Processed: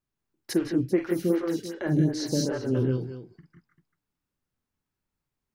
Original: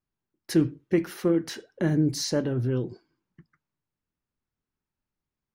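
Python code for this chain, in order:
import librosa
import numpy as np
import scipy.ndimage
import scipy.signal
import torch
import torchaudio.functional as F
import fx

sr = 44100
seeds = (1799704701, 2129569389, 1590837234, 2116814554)

y = fx.echo_multitap(x, sr, ms=(45, 52, 157, 180, 393), db=(-9.0, -10.5, -7.5, -3.5, -13.0))
y = fx.stagger_phaser(y, sr, hz=2.6, at=(0.53, 2.75))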